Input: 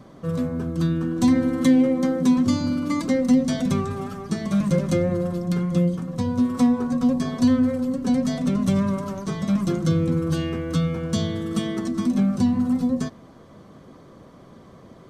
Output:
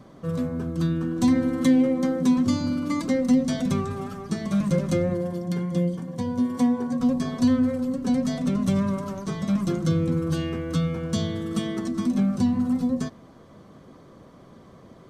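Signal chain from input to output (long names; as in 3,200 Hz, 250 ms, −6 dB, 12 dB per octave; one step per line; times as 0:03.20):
0:05.14–0:07.00: notch comb filter 1,300 Hz
level −2 dB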